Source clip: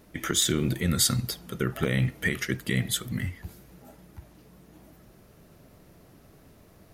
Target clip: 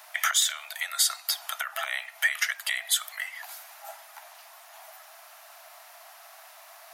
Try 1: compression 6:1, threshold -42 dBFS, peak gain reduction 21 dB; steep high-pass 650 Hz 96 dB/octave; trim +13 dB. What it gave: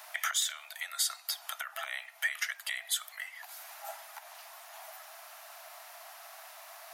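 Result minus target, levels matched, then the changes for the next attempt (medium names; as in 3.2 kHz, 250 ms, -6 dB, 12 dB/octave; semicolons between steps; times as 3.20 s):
compression: peak gain reduction +7 dB
change: compression 6:1, threshold -33.5 dBFS, peak gain reduction 14 dB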